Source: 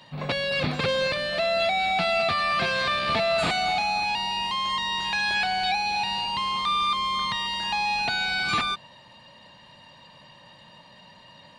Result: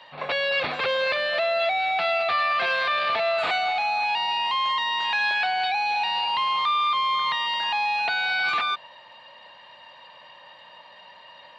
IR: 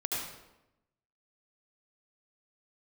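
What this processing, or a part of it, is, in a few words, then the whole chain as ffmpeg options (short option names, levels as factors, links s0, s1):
DJ mixer with the lows and highs turned down: -filter_complex "[0:a]acrossover=split=450 3900:gain=0.0794 1 0.112[s0][s1][s2];[s0][s1][s2]amix=inputs=3:normalize=0,alimiter=limit=0.0794:level=0:latency=1:release=13,equalizer=f=86:w=1.5:g=3,volume=1.78"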